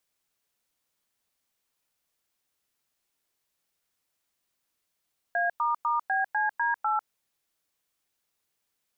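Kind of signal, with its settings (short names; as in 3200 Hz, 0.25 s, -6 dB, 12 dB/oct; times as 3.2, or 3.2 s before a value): DTMF "A**BCD8", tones 0.148 s, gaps 0.101 s, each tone -26 dBFS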